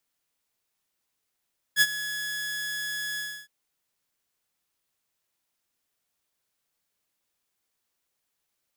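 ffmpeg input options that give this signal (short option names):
-f lavfi -i "aevalsrc='0.237*(2*mod(1690*t,1)-1)':d=1.715:s=44100,afade=t=in:d=0.053,afade=t=out:st=0.053:d=0.046:silence=0.178,afade=t=out:st=1.42:d=0.295"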